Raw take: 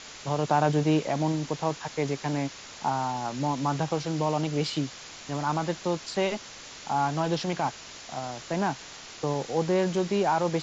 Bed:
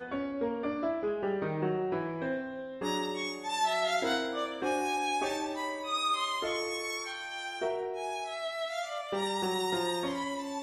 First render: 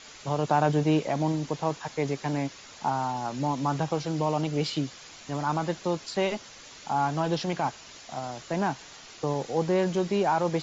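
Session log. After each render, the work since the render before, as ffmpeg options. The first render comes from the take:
-af "afftdn=nr=6:nf=-45"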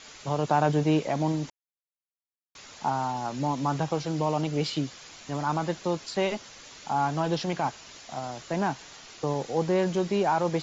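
-filter_complex "[0:a]asplit=3[a][b][c];[a]atrim=end=1.5,asetpts=PTS-STARTPTS,afade=t=out:st=1.496:d=0.004:c=hsin[d];[b]atrim=start=1.5:end=2.55,asetpts=PTS-STARTPTS,volume=0[e];[c]atrim=start=2.55,asetpts=PTS-STARTPTS,afade=t=in:d=0.004:c=hsin[f];[d][e][f]concat=n=3:v=0:a=1"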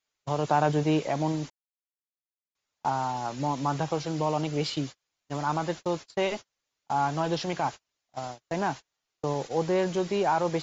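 -af "agate=range=-37dB:threshold=-34dB:ratio=16:detection=peak,equalizer=f=210:t=o:w=0.74:g=-4.5"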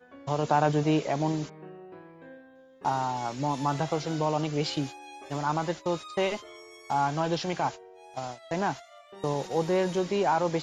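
-filter_complex "[1:a]volume=-14.5dB[a];[0:a][a]amix=inputs=2:normalize=0"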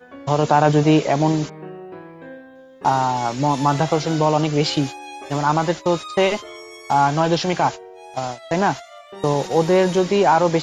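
-af "volume=10dB,alimiter=limit=-3dB:level=0:latency=1"

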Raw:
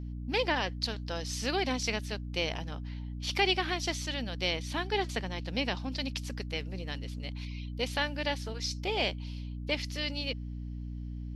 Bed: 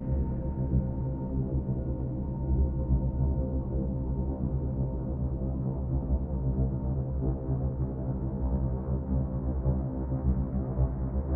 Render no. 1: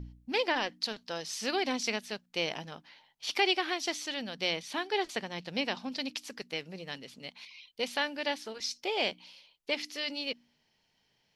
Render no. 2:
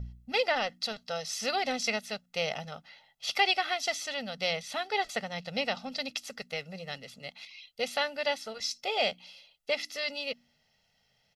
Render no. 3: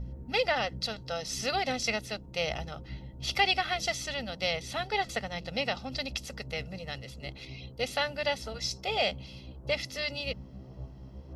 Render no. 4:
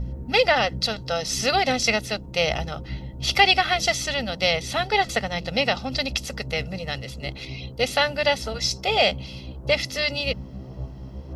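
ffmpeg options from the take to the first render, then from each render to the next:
-af "bandreject=f=60:t=h:w=4,bandreject=f=120:t=h:w=4,bandreject=f=180:t=h:w=4,bandreject=f=240:t=h:w=4,bandreject=f=300:t=h:w=4"
-af "aecho=1:1:1.5:0.85"
-filter_complex "[1:a]volume=-15.5dB[a];[0:a][a]amix=inputs=2:normalize=0"
-af "volume=9dB"

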